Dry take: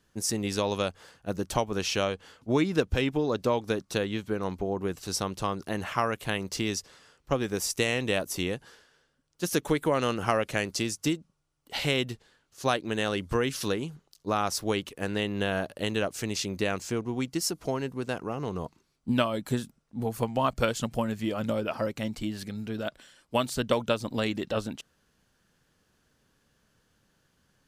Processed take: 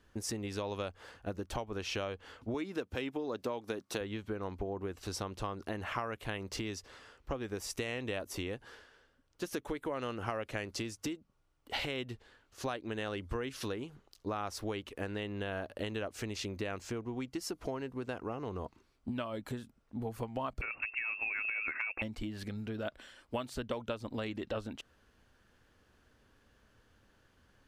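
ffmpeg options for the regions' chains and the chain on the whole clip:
-filter_complex "[0:a]asettb=1/sr,asplit=3[a][b][c];[a]atrim=end=2.544[d];[b]atrim=start=2.54:end=4.01,asetpts=PTS-STARTPTS,afade=t=in:d=0.004:c=qsin,afade=t=out:st=1.466:d=0.004:c=qsin,highpass=150,highshelf=f=7k:g=8[e];[c]atrim=start=4.006[f];[d][e]acrossfade=d=0.004:c1=hsin:c2=qsin[g];[g][f]acrossfade=d=0.004:c1=qsin:c2=hsin,asettb=1/sr,asplit=3[h][i][j];[h]atrim=end=20.614[k];[i]atrim=start=20.61:end=22.02,asetpts=PTS-STARTPTS,afade=t=in:d=0.004:c=qsin,afade=t=out:st=1.406:d=0.004:c=qsin,lowpass=f=2.4k:t=q:w=0.5098,lowpass=f=2.4k:t=q:w=0.6013,lowpass=f=2.4k:t=q:w=0.9,lowpass=f=2.4k:t=q:w=2.563,afreqshift=-2800,acompressor=threshold=-28dB:ratio=5:attack=3.2:release=140:knee=1:detection=peak[l];[j]atrim=start=22.016[m];[k][l]acrossfade=d=0.004:c1=hsin:c2=qsin[n];[n][m]acrossfade=d=0.004:c1=qsin:c2=hsin,bass=f=250:g=4,treble=f=4k:g=-9,acompressor=threshold=-36dB:ratio=6,equalizer=f=160:t=o:w=0.62:g=-13,volume=3dB"

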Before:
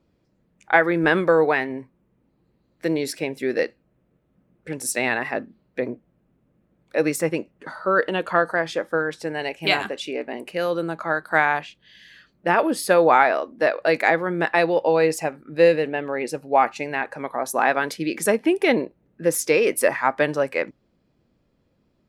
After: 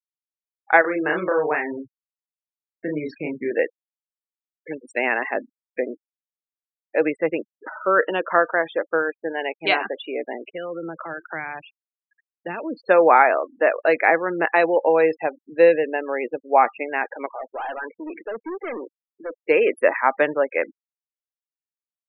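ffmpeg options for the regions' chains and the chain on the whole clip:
-filter_complex "[0:a]asettb=1/sr,asplit=3[a][b][c];[a]atrim=end=0.814[d];[b]atrim=start=0.81:end=3.51,asetpts=PTS-STARTPTS,afade=t=in:d=0.004:c=qsin,afade=t=out:st=2.696:d=0.004:c=qsin,asubboost=boost=9:cutoff=200,acompressor=threshold=-24dB:ratio=2:attack=3.2:release=140:knee=1:detection=peak,asplit=2[e][f];[f]adelay=33,volume=-3dB[g];[e][g]amix=inputs=2:normalize=0,atrim=end_sample=119070[h];[c]atrim=start=3.506[i];[d][h]acrossfade=d=0.004:c1=hsin:c2=qsin[j];[j][i]acrossfade=d=0.004:c1=qsin:c2=hsin,asettb=1/sr,asplit=3[k][l][m];[k]atrim=end=10.524[n];[l]atrim=start=10.52:end=12.87,asetpts=PTS-STARTPTS,afade=t=in:d=0.004:c=qsin,afade=t=out:st=2.346:d=0.004:c=qsin,equalizer=f=130:t=o:w=0.31:g=10,acrossover=split=260|3000[o][p][q];[p]acompressor=threshold=-30dB:ratio=8:attack=3.2:release=140:knee=2.83:detection=peak[r];[o][r][q]amix=inputs=3:normalize=0,aecho=1:1:377:0.0794,atrim=end_sample=103635[s];[m]atrim=start=12.866[t];[n][s]acrossfade=d=0.004:c1=hsin:c2=qsin[u];[u][t]acrossfade=d=0.004:c1=qsin:c2=hsin,asettb=1/sr,asplit=3[v][w][x];[v]atrim=end=17.264[y];[w]atrim=start=17.26:end=19.46,asetpts=PTS-STARTPTS,afade=t=in:d=0.004:c=qsin,afade=t=out:st=2.196:d=0.004:c=qsin,highpass=200,lowpass=3.4k,aeval=exprs='(tanh(25.1*val(0)+0.45)-tanh(0.45))/25.1':c=same[z];[x]atrim=start=19.456[aa];[y][z]acrossfade=d=0.004:c1=hsin:c2=qsin[ab];[ab][aa]acrossfade=d=0.004:c1=qsin:c2=hsin,acrossover=split=260 3400:gain=0.141 1 0.126[ac][ad][ae];[ac][ad][ae]amix=inputs=3:normalize=0,afftfilt=real='re*gte(hypot(re,im),0.0282)':imag='im*gte(hypot(re,im),0.0282)':win_size=1024:overlap=0.75,volume=2dB"

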